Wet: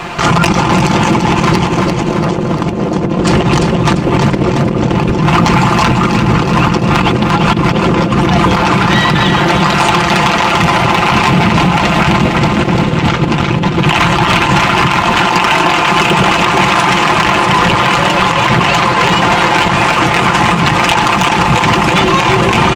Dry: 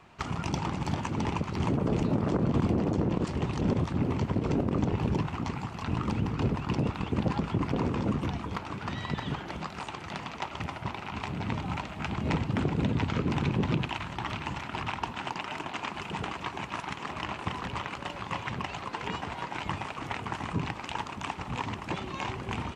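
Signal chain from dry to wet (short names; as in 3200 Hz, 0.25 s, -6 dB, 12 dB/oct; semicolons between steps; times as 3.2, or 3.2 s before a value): low shelf 310 Hz -3.5 dB; notches 50/100/150/200/250/300 Hz; comb 5.8 ms, depth 59%; negative-ratio compressor -35 dBFS, ratio -0.5; hard clip -27.5 dBFS, distortion -17 dB; on a send: feedback echo 0.344 s, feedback 54%, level -9 dB; on the sum: maximiser +31 dB; gain -1 dB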